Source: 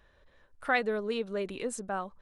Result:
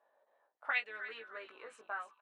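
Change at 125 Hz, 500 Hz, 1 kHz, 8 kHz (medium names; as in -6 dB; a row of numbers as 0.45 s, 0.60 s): no reading, -19.0 dB, -9.5 dB, under -20 dB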